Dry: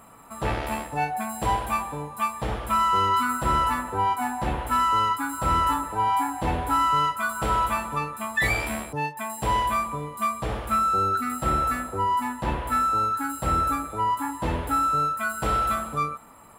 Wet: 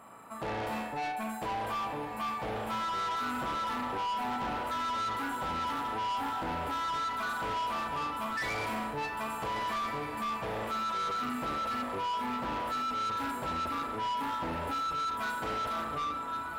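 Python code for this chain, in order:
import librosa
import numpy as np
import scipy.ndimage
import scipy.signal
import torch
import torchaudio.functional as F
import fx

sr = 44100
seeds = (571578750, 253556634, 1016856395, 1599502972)

p1 = fx.high_shelf(x, sr, hz=4600.0, db=-9.5)
p2 = fx.room_flutter(p1, sr, wall_m=6.3, rt60_s=0.46)
p3 = fx.over_compress(p2, sr, threshold_db=-27.0, ratio=-1.0)
p4 = p2 + (p3 * librosa.db_to_amplitude(-2.0))
p5 = fx.highpass(p4, sr, hz=240.0, slope=6)
p6 = p5 + fx.echo_diffused(p5, sr, ms=1358, feedback_pct=57, wet_db=-8.5, dry=0)
p7 = 10.0 ** (-22.5 / 20.0) * np.tanh(p6 / 10.0 ** (-22.5 / 20.0))
y = p7 * librosa.db_to_amplitude(-8.0)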